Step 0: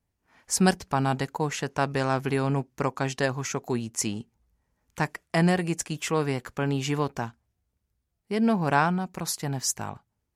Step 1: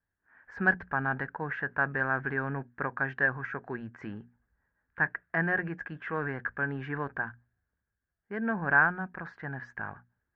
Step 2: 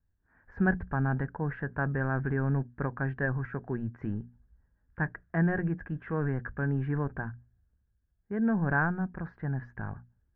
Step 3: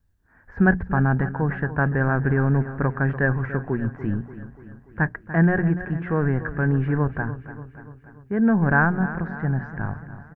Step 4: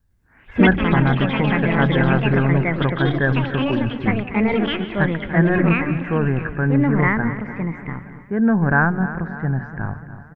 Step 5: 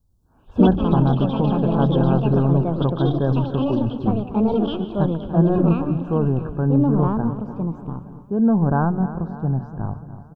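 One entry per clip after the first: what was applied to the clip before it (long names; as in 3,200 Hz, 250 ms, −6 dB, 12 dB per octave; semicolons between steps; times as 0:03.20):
transient designer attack 0 dB, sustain +5 dB; transistor ladder low-pass 1,700 Hz, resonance 85%; mains-hum notches 60/120/180/240 Hz; level +3.5 dB
spectral tilt −4.5 dB per octave; level −4 dB
repeating echo 291 ms, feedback 58%, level −13.5 dB; level +8.5 dB
delay with pitch and tempo change per echo 105 ms, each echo +4 semitones, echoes 3; level +2 dB
Butterworth band-reject 2,000 Hz, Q 0.72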